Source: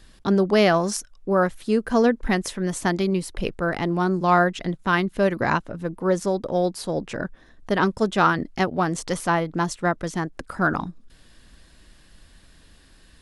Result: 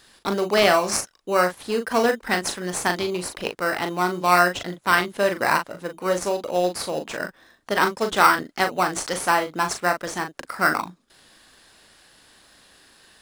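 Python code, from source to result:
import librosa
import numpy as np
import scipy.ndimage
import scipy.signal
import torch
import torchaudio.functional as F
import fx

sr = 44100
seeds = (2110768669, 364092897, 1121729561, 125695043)

p1 = fx.highpass(x, sr, hz=1200.0, slope=6)
p2 = fx.sample_hold(p1, sr, seeds[0], rate_hz=3400.0, jitter_pct=0)
p3 = p1 + (p2 * 10.0 ** (-6.5 / 20.0))
p4 = fx.doubler(p3, sr, ms=39.0, db=-7)
y = p4 * 10.0 ** (4.0 / 20.0)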